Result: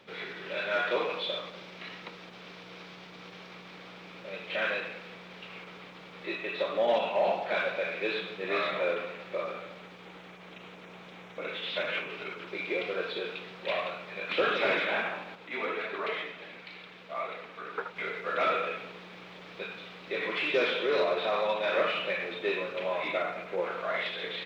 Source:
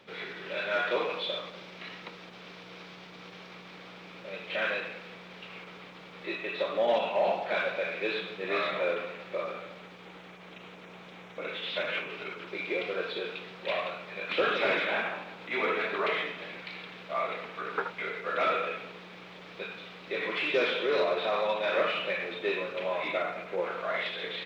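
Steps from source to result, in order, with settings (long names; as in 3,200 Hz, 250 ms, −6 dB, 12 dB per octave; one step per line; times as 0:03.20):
0:15.35–0:17.96: flanger 2 Hz, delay 1.3 ms, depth 3.4 ms, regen +70%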